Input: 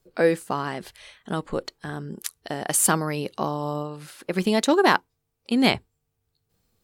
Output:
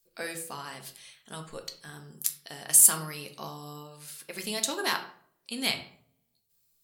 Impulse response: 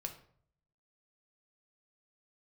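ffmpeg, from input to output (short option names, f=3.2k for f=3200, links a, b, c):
-filter_complex "[0:a]crystalizer=i=10:c=0[a];[1:a]atrim=start_sample=2205[b];[a][b]afir=irnorm=-1:irlink=0,volume=-15.5dB"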